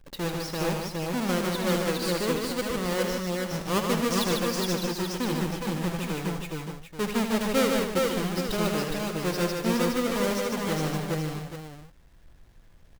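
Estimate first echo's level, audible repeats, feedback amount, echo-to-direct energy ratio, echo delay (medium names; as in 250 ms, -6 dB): -8.0 dB, 7, no regular repeats, 1.5 dB, 77 ms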